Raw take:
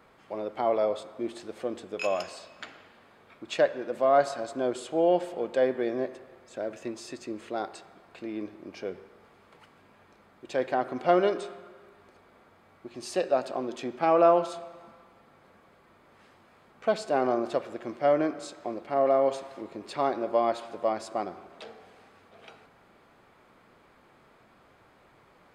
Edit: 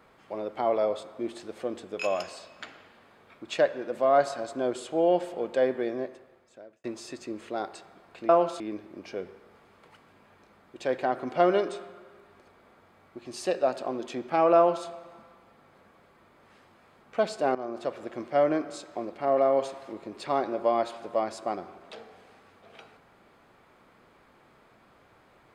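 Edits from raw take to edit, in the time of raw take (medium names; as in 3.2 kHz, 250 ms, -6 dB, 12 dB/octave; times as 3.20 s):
5.73–6.84 s: fade out
14.25–14.56 s: copy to 8.29 s
17.24–17.76 s: fade in, from -13.5 dB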